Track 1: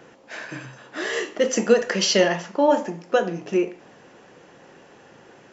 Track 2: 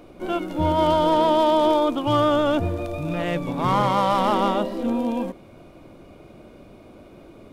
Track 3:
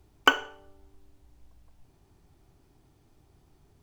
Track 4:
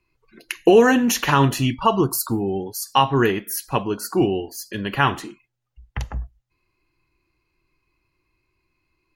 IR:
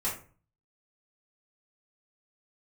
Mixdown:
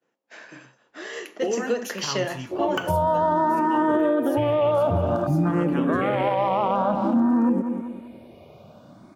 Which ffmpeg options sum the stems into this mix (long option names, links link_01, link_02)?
-filter_complex "[0:a]highpass=170,agate=range=-33dB:threshold=-38dB:ratio=3:detection=peak,aeval=exprs='0.596*(cos(1*acos(clip(val(0)/0.596,-1,1)))-cos(1*PI/2))+0.0106*(cos(7*acos(clip(val(0)/0.596,-1,1)))-cos(7*PI/2))':channel_layout=same,volume=-7.5dB[link_01];[1:a]afwtdn=0.0398,dynaudnorm=framelen=130:gausssize=9:maxgain=16dB,asplit=2[link_02][link_03];[link_03]afreqshift=0.53[link_04];[link_02][link_04]amix=inputs=2:normalize=1,adelay=2300,volume=2.5dB,asplit=2[link_05][link_06];[link_06]volume=-13dB[link_07];[2:a]adelay=2500,volume=0dB[link_08];[3:a]adelay=750,volume=-16.5dB,asplit=3[link_09][link_10][link_11];[link_10]volume=-13.5dB[link_12];[link_11]volume=-16dB[link_13];[4:a]atrim=start_sample=2205[link_14];[link_12][link_14]afir=irnorm=-1:irlink=0[link_15];[link_07][link_13]amix=inputs=2:normalize=0,aecho=0:1:194|388|582|776|970:1|0.38|0.144|0.0549|0.0209[link_16];[link_01][link_05][link_08][link_09][link_15][link_16]amix=inputs=6:normalize=0,highpass=86,alimiter=limit=-13.5dB:level=0:latency=1:release=144"